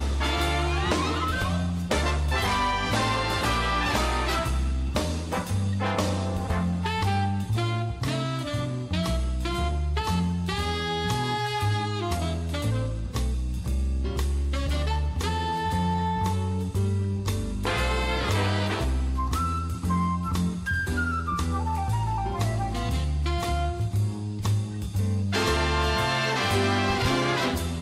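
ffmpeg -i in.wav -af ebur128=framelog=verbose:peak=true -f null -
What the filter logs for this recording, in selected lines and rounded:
Integrated loudness:
  I:         -26.6 LUFS
  Threshold: -36.6 LUFS
Loudness range:
  LRA:         2.8 LU
  Threshold: -46.8 LUFS
  LRA low:   -28.0 LUFS
  LRA high:  -25.1 LUFS
True peak:
  Peak:      -14.3 dBFS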